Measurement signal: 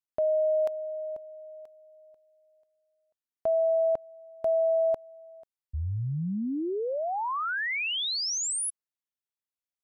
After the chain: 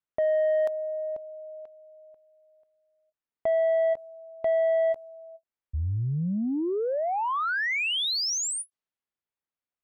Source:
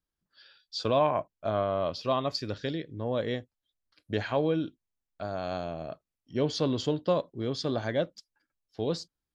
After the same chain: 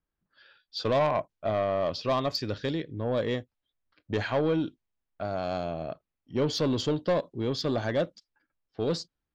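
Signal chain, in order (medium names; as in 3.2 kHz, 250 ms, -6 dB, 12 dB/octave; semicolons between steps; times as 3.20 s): level-controlled noise filter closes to 2.3 kHz, open at -24 dBFS; saturation -22.5 dBFS; endings held to a fixed fall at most 590 dB/s; trim +3.5 dB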